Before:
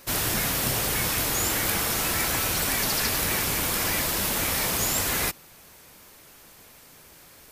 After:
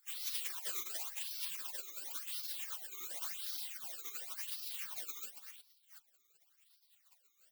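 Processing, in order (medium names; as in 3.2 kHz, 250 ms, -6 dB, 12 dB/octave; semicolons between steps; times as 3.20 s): chunks repeated in reverse 374 ms, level -9.5 dB; modulation noise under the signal 12 dB; phase shifter stages 12, 0.92 Hz, lowest notch 370–4700 Hz; spectral gate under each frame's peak -30 dB weak; trim +8 dB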